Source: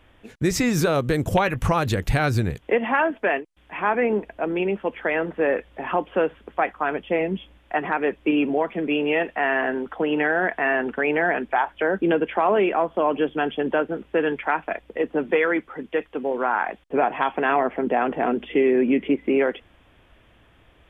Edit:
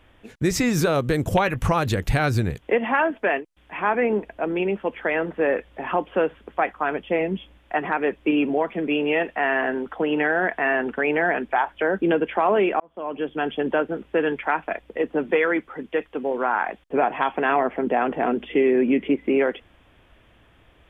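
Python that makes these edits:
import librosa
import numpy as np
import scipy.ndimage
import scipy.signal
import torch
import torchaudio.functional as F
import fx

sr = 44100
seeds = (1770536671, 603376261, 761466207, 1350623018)

y = fx.edit(x, sr, fx.fade_in_span(start_s=12.8, length_s=0.74), tone=tone)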